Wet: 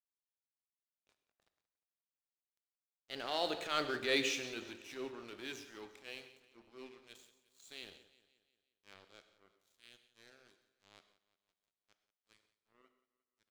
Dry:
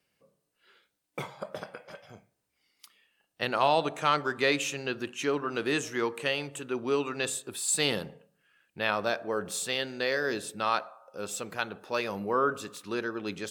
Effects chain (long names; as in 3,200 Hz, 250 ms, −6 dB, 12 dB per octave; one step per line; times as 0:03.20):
source passing by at 0:03.90, 33 m/s, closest 17 metres
transient designer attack −9 dB, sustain +3 dB
graphic EQ with 15 bands 160 Hz −12 dB, 1,000 Hz −10 dB, 4,000 Hz +6 dB, 10,000 Hz −11 dB
dead-zone distortion −53 dBFS
leveller curve on the samples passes 1
repeating echo 177 ms, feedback 52%, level −17 dB
on a send at −10 dB: convolution reverb, pre-delay 3 ms
on the sum: level −7 dB